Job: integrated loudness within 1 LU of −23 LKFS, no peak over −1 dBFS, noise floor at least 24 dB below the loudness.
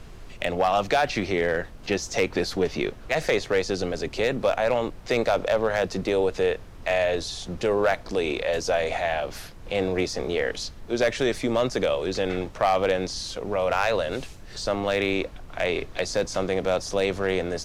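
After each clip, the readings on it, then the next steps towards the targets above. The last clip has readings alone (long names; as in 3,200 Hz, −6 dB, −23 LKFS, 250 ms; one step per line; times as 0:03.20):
share of clipped samples 0.2%; peaks flattened at −13.5 dBFS; background noise floor −43 dBFS; target noise floor −50 dBFS; integrated loudness −25.5 LKFS; sample peak −13.5 dBFS; target loudness −23.0 LKFS
→ clipped peaks rebuilt −13.5 dBFS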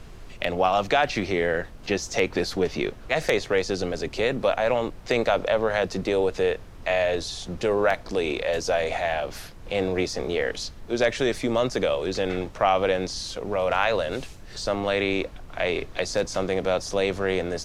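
share of clipped samples 0.0%; background noise floor −43 dBFS; target noise floor −50 dBFS
→ noise reduction from a noise print 7 dB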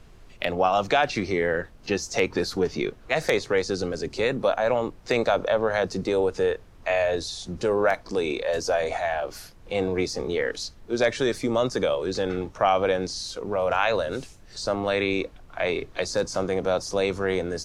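background noise floor −49 dBFS; target noise floor −50 dBFS
→ noise reduction from a noise print 6 dB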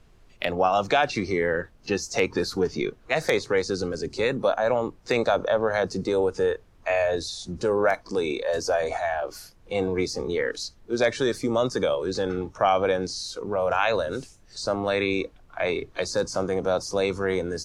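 background noise floor −55 dBFS; integrated loudness −26.0 LKFS; sample peak −5.5 dBFS; target loudness −23.0 LKFS
→ level +3 dB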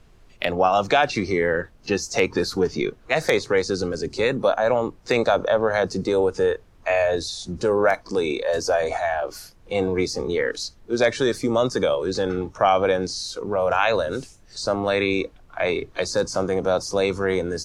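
integrated loudness −23.0 LKFS; sample peak −2.5 dBFS; background noise floor −52 dBFS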